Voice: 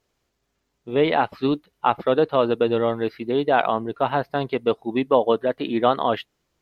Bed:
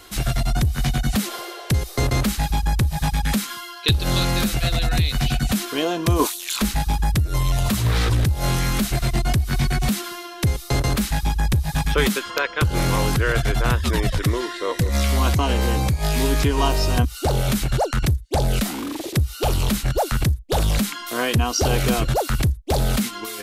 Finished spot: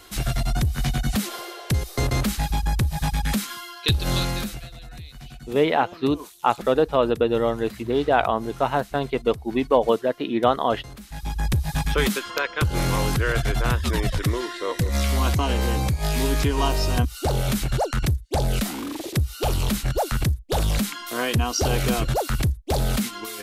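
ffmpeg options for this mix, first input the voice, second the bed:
-filter_complex "[0:a]adelay=4600,volume=-0.5dB[a];[1:a]volume=15dB,afade=t=out:st=4.15:d=0.53:silence=0.133352,afade=t=in:st=11.07:d=0.44:silence=0.133352[b];[a][b]amix=inputs=2:normalize=0"

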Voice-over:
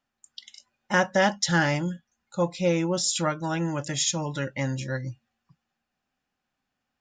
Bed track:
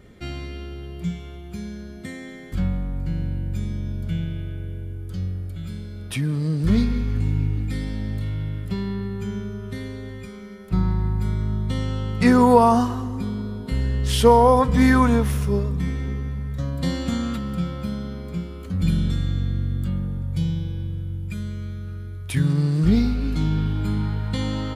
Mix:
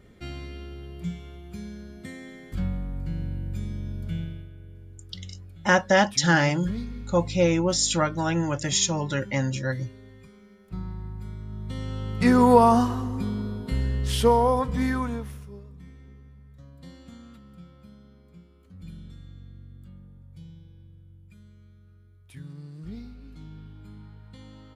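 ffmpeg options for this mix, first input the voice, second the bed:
-filter_complex "[0:a]adelay=4750,volume=2.5dB[a];[1:a]volume=7dB,afade=t=out:st=4.2:d=0.29:silence=0.375837,afade=t=in:st=11.47:d=1.09:silence=0.251189,afade=t=out:st=13.47:d=2.04:silence=0.1[b];[a][b]amix=inputs=2:normalize=0"

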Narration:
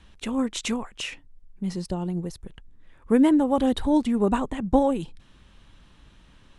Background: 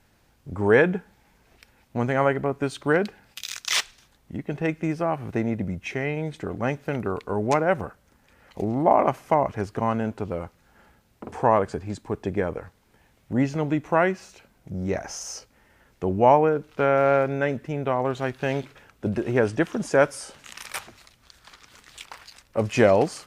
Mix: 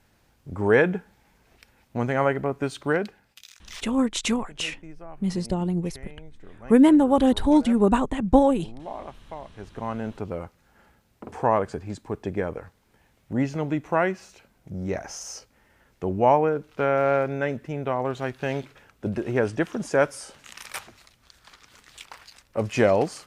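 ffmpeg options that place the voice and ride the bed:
-filter_complex "[0:a]adelay=3600,volume=3dB[a];[1:a]volume=15dB,afade=t=out:st=2.79:d=0.75:silence=0.141254,afade=t=in:st=9.48:d=0.77:silence=0.158489[b];[a][b]amix=inputs=2:normalize=0"

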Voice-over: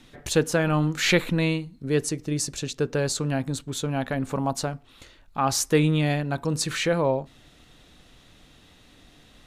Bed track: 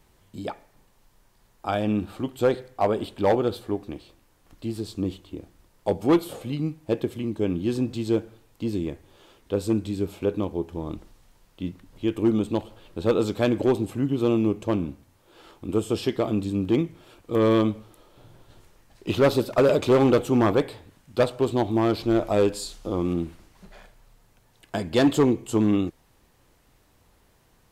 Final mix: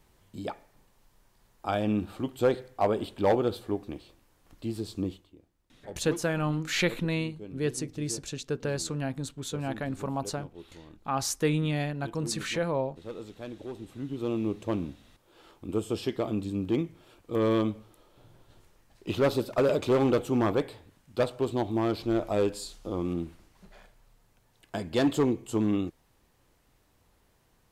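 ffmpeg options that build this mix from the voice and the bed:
-filter_complex "[0:a]adelay=5700,volume=-6dB[a];[1:a]volume=10dB,afade=t=out:st=4.99:d=0.34:silence=0.16788,afade=t=in:st=13.71:d=0.97:silence=0.223872[b];[a][b]amix=inputs=2:normalize=0"

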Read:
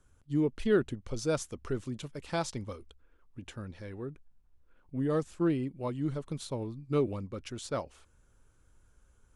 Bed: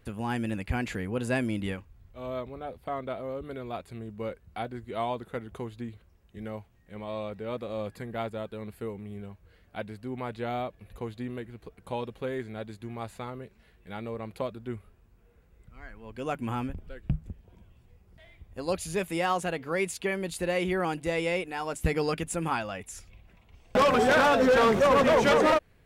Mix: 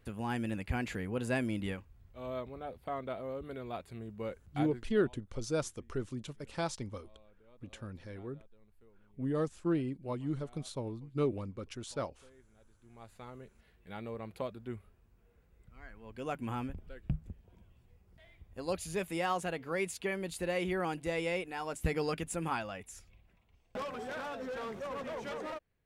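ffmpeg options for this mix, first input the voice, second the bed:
-filter_complex "[0:a]adelay=4250,volume=-3dB[a];[1:a]volume=18.5dB,afade=t=out:st=4.7:d=0.21:silence=0.0630957,afade=t=in:st=12.78:d=0.91:silence=0.0707946,afade=t=out:st=22.61:d=1.28:silence=0.211349[b];[a][b]amix=inputs=2:normalize=0"

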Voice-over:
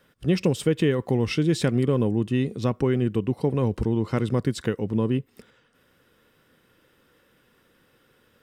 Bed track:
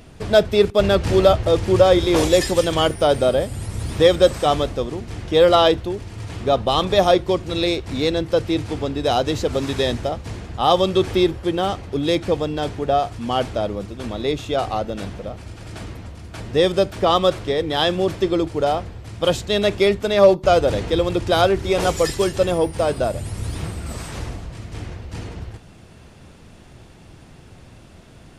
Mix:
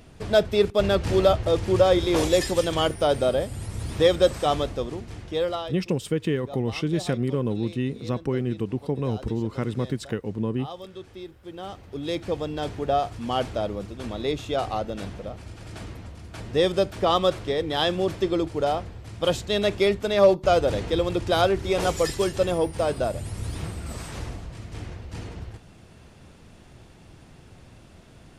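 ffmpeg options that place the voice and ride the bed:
-filter_complex "[0:a]adelay=5450,volume=-3.5dB[a];[1:a]volume=13dB,afade=t=out:st=4.94:d=0.76:silence=0.133352,afade=t=in:st=11.37:d=1.44:silence=0.125893[b];[a][b]amix=inputs=2:normalize=0"

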